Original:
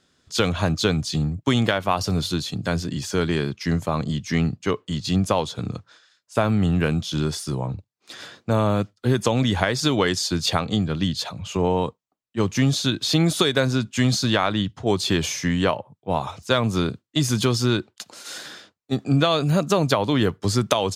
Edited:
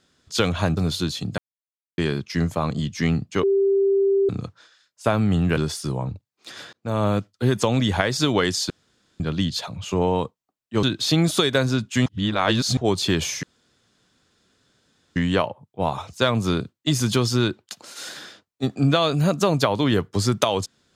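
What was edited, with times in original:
0.77–2.08 cut
2.69–3.29 mute
4.74–5.6 bleep 393 Hz -15.5 dBFS
6.88–7.2 cut
8.36–8.69 fade in
10.33–10.83 room tone
12.46–12.85 cut
14.08–14.79 reverse
15.45 insert room tone 1.73 s

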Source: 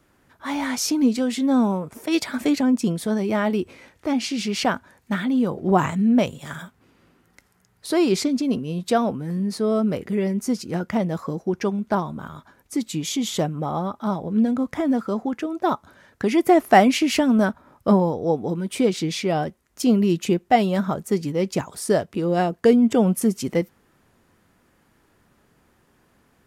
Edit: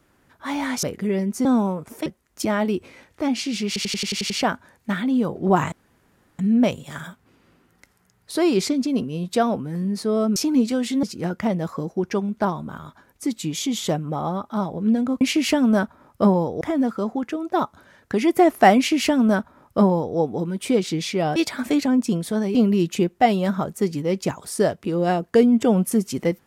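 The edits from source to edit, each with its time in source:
0.83–1.5 swap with 9.91–10.53
2.11–3.3 swap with 19.46–19.85
4.52 stutter 0.09 s, 8 plays
5.94 insert room tone 0.67 s
16.87–18.27 copy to 14.71

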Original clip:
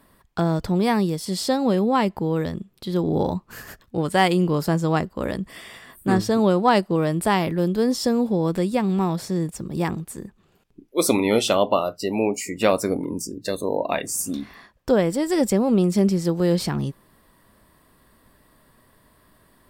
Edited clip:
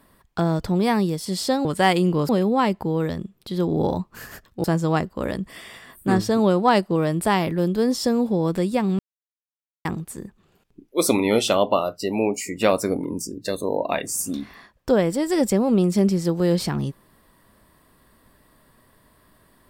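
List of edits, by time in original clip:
4–4.64 move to 1.65
8.99–9.85 mute

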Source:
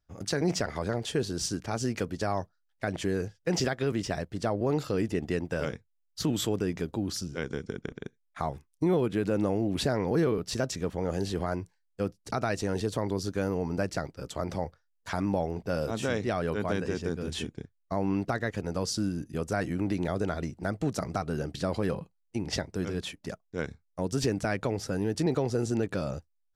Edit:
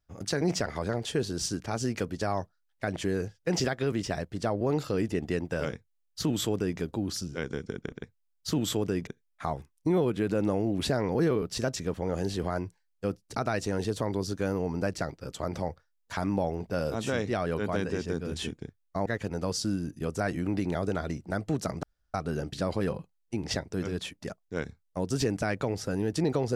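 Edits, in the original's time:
5.75–6.79 copy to 8.03
18.02–18.39 cut
21.16 insert room tone 0.31 s

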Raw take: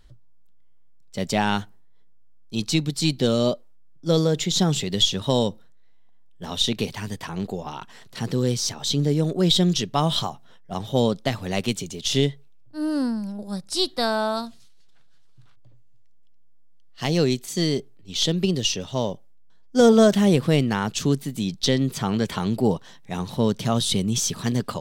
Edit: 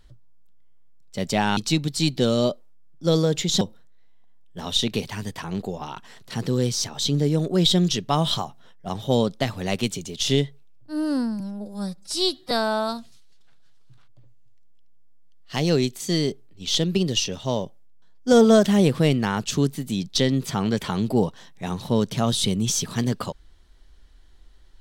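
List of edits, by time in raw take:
1.57–2.59 cut
4.63–5.46 cut
13.25–13.99 stretch 1.5×

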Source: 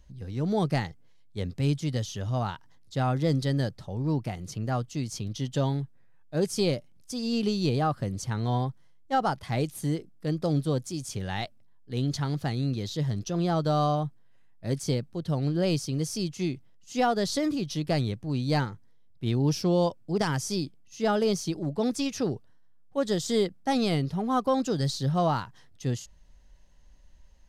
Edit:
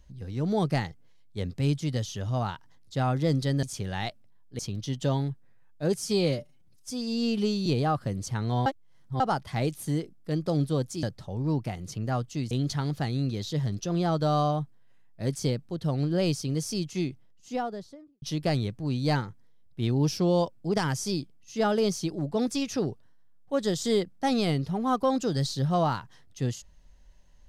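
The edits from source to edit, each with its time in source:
3.63–5.11 swap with 10.99–11.95
6.5–7.62 stretch 1.5×
8.62–9.16 reverse
16.45–17.66 studio fade out

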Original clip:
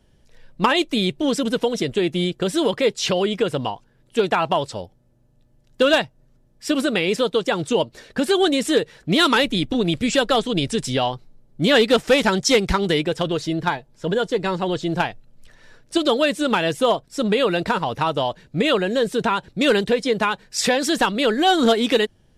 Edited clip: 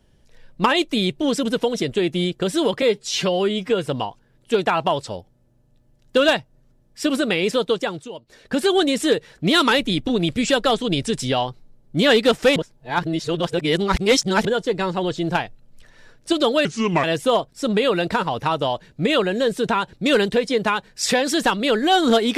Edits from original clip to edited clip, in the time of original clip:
2.82–3.52 stretch 1.5×
7.38–8.22 dip -15.5 dB, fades 0.35 s
12.21–14.1 reverse
16.3–16.59 speed 75%

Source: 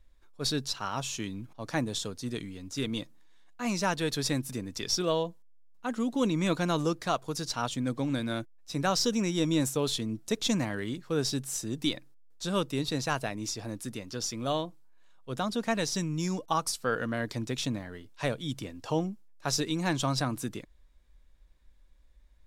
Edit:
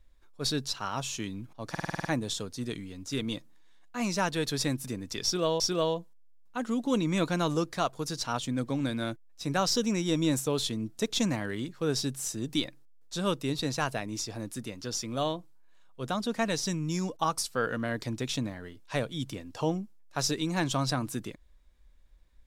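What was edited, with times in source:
1.7 stutter 0.05 s, 8 plays
4.89–5.25 loop, 2 plays

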